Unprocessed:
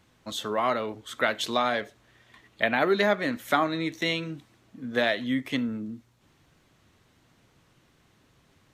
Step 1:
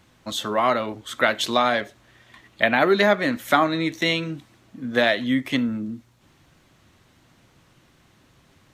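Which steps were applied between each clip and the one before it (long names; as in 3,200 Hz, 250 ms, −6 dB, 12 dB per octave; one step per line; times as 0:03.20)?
notch filter 440 Hz, Q 12
level +5.5 dB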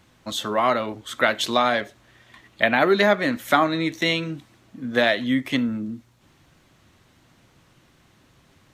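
no processing that can be heard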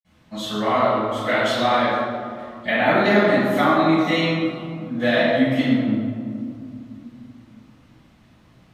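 convolution reverb RT60 2.5 s, pre-delay 46 ms
level +5 dB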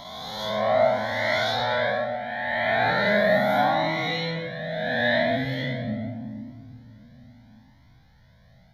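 peak hold with a rise ahead of every peak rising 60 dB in 2.01 s
phaser with its sweep stopped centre 1,800 Hz, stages 8
flanger whose copies keep moving one way rising 0.77 Hz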